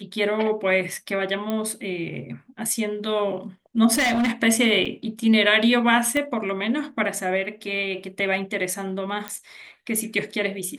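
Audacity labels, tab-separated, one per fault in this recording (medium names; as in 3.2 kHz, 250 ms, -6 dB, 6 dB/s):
1.500000	1.500000	pop -14 dBFS
3.930000	4.320000	clipped -18 dBFS
4.850000	4.860000	dropout 5.5 ms
6.170000	6.170000	pop -13 dBFS
9.280000	9.280000	pop -13 dBFS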